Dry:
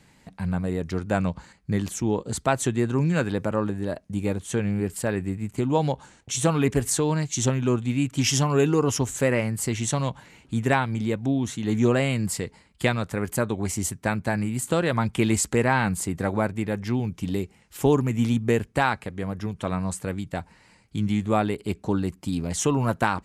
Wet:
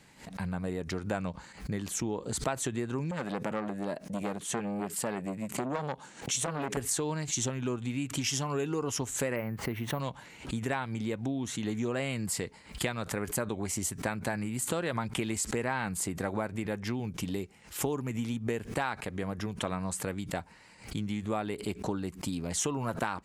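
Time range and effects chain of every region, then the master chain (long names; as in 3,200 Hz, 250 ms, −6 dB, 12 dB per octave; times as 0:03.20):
0:03.11–0:06.77: low shelf with overshoot 120 Hz −9 dB, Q 1.5 + hard clipping −12 dBFS + saturating transformer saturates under 840 Hz
0:09.36–0:10.00: low-pass filter 1,900 Hz + bad sample-rate conversion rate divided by 3×, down filtered, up hold
whole clip: downward compressor, threshold −27 dBFS; low-shelf EQ 210 Hz −6.5 dB; background raised ahead of every attack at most 140 dB per second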